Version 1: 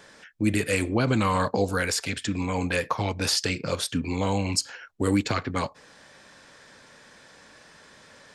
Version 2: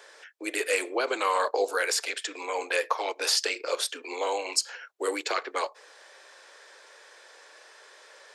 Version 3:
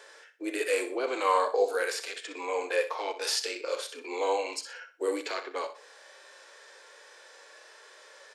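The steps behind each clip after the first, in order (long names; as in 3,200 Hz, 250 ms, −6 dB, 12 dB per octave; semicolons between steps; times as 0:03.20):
Butterworth high-pass 370 Hz 48 dB per octave
harmonic and percussive parts rebalanced percussive −15 dB; repeating echo 62 ms, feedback 29%, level −12 dB; level +3 dB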